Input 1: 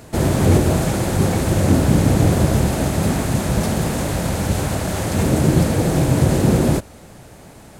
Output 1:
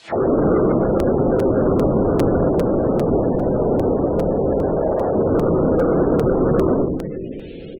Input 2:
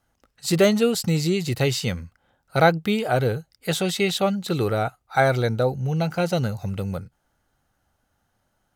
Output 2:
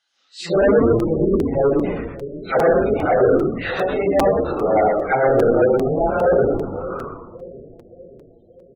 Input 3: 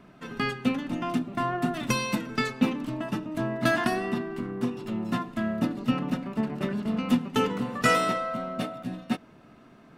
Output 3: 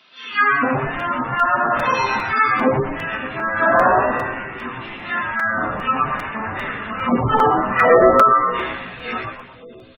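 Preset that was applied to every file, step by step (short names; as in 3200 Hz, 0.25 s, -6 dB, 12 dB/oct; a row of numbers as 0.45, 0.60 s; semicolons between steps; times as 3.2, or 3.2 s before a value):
phase scrambler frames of 0.2 s; in parallel at -1 dB: limiter -11.5 dBFS; on the sum: auto-wah 450–3800 Hz, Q 2.5, down, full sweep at -12.5 dBFS; split-band echo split 510 Hz, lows 0.575 s, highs 0.12 s, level -15 dB; hard clip -20 dBFS; frequency-shifting echo 0.116 s, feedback 36%, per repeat -120 Hz, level -4 dB; spectral gate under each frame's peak -25 dB strong; crackling interface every 0.40 s, samples 256, repeat, from 0.99; match loudness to -18 LUFS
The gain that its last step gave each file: +5.5, +7.5, +13.0 dB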